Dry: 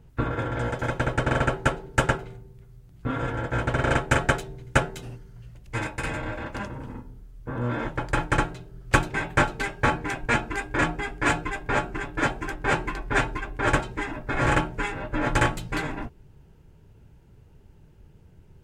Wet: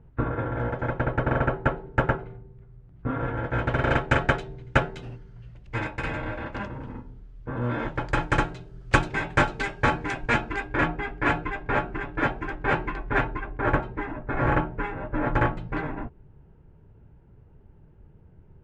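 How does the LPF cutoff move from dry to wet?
3.14 s 1700 Hz
3.71 s 3600 Hz
7.54 s 3600 Hz
8.25 s 6000 Hz
10.19 s 6000 Hz
10.92 s 2600 Hz
12.92 s 2600 Hz
13.66 s 1600 Hz

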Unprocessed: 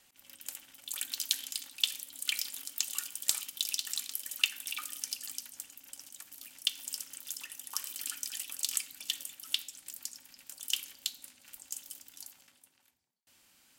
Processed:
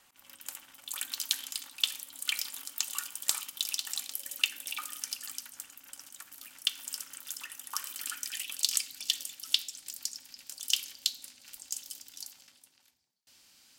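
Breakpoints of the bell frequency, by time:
bell +8.5 dB 1.1 oct
3.75 s 1100 Hz
4.54 s 360 Hz
4.95 s 1300 Hz
8.15 s 1300 Hz
8.71 s 4900 Hz

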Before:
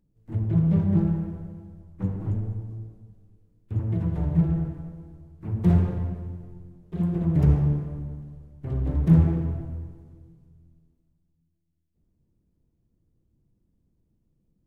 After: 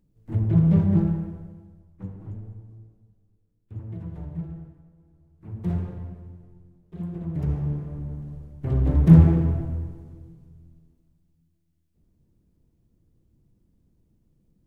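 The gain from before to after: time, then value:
0.78 s +3 dB
2.16 s -9.5 dB
4.17 s -9.5 dB
4.9 s -16.5 dB
5.51 s -7.5 dB
7.46 s -7.5 dB
8.34 s +5 dB

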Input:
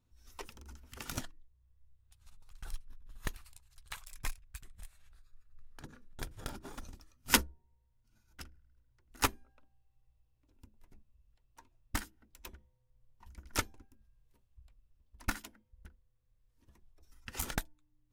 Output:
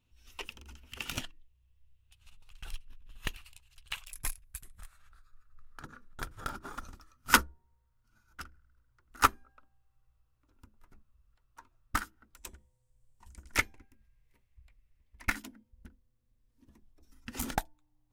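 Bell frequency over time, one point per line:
bell +13.5 dB 0.63 oct
2800 Hz
from 4.12 s 11000 Hz
from 4.78 s 1300 Hz
from 12.37 s 8100 Hz
from 13.54 s 2100 Hz
from 15.35 s 250 Hz
from 17.55 s 790 Hz

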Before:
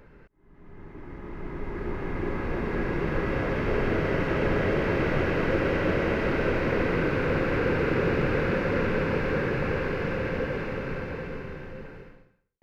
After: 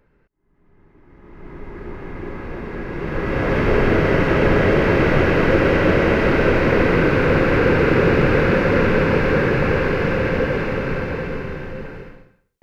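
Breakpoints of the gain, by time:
1.04 s -8.5 dB
1.52 s -0.5 dB
2.87 s -0.5 dB
3.56 s +9.5 dB

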